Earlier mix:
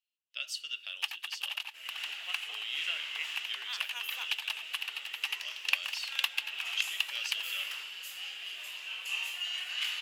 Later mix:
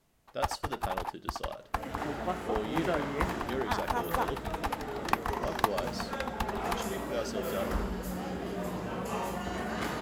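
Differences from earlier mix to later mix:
first sound: entry −0.60 s
master: remove high-pass with resonance 2,800 Hz, resonance Q 7.4

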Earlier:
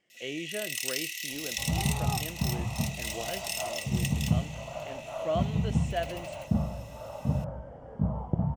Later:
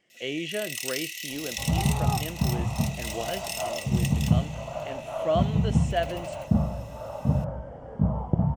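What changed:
speech +5.0 dB
second sound +4.5 dB

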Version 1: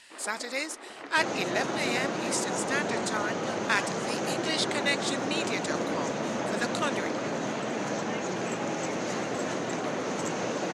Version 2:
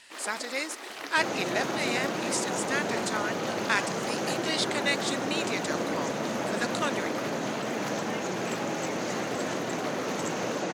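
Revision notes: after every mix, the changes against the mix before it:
first sound: remove head-to-tape spacing loss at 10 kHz 31 dB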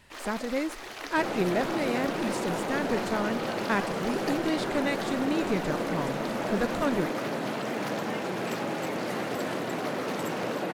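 speech: remove meter weighting curve ITU-R 468
second sound: remove low-pass with resonance 6,400 Hz, resonance Q 6.2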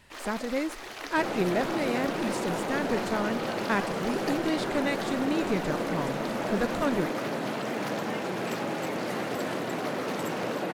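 nothing changed

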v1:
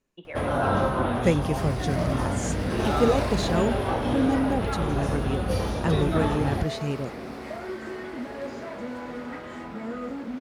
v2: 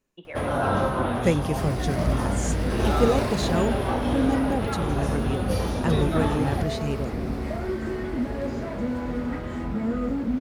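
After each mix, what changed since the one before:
second sound: remove high-pass filter 580 Hz 6 dB per octave
master: add high-shelf EQ 11,000 Hz +6.5 dB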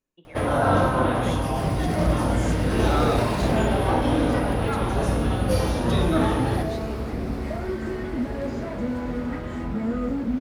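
speech −10.5 dB
reverb: on, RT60 1.0 s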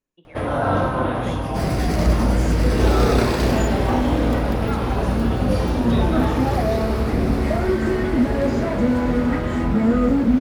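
first sound: add high-shelf EQ 6,700 Hz −10 dB
second sound +9.0 dB

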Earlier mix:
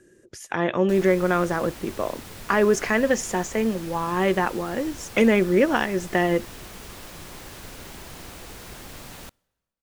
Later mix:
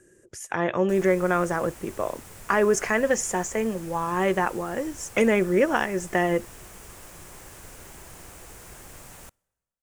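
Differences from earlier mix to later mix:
background −4.0 dB
master: add octave-band graphic EQ 250/4,000/8,000 Hz −5/−8/+6 dB

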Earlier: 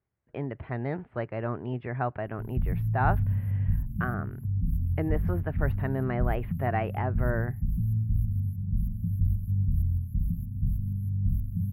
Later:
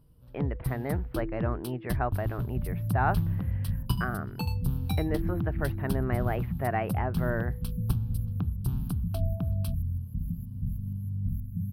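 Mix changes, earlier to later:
first sound: unmuted
master: add low-shelf EQ 93 Hz −8 dB

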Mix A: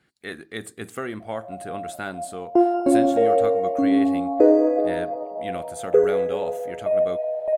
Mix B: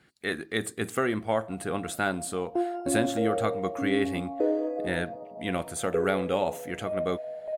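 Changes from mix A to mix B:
speech +4.0 dB
background −11.0 dB

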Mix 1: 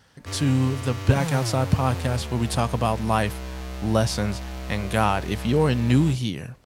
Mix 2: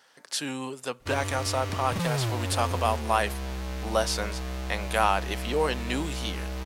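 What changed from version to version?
speech: add high-pass filter 500 Hz 12 dB per octave
background: entry +0.80 s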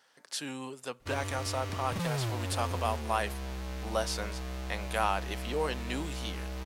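speech −6.0 dB
background −4.5 dB

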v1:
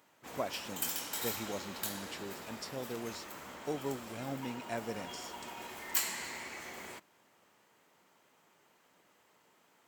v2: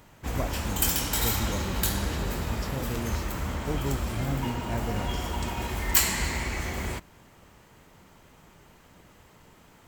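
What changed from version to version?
background +10.0 dB
master: remove Bessel high-pass filter 380 Hz, order 2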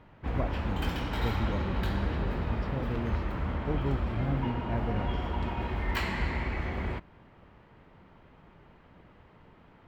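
master: add high-frequency loss of the air 380 metres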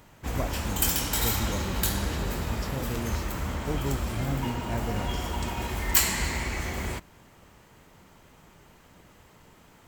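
master: remove high-frequency loss of the air 380 metres

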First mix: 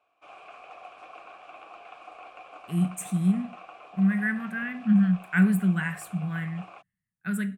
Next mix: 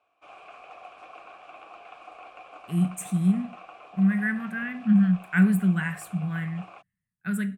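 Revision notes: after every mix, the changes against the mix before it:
master: add low-shelf EQ 150 Hz +3 dB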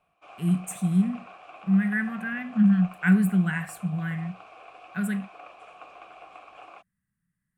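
speech: entry −2.30 s

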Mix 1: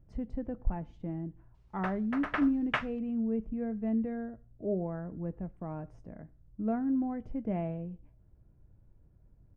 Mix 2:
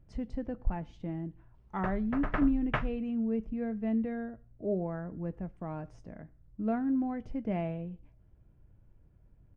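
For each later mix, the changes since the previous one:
speech: add parametric band 4,800 Hz +10 dB 2.7 octaves
background: add spectral tilt −3.5 dB per octave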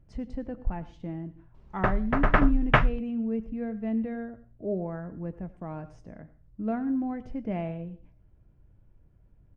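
speech: send +11.5 dB
background +11.5 dB

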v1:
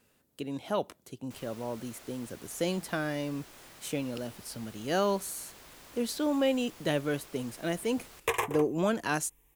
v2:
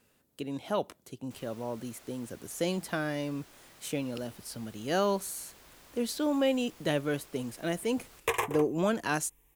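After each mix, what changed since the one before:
first sound −4.0 dB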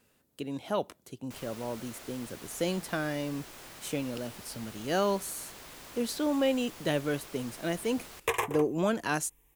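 first sound +8.5 dB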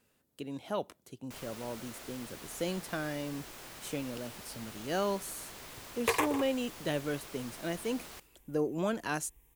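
speech −4.0 dB
second sound: entry −2.20 s

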